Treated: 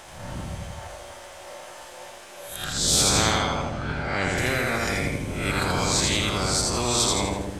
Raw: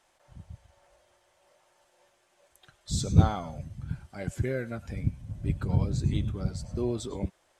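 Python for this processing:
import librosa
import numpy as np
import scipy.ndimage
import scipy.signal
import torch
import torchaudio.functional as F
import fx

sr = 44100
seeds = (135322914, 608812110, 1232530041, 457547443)

y = fx.spec_swells(x, sr, rise_s=0.52)
y = fx.lowpass(y, sr, hz=fx.line((3.22, 6000.0), (4.37, 3200.0)), slope=12, at=(3.22, 4.37), fade=0.02)
y = fx.echo_feedback(y, sr, ms=82, feedback_pct=43, wet_db=-4)
y = fx.spectral_comp(y, sr, ratio=4.0)
y = F.gain(torch.from_numpy(y), -3.5).numpy()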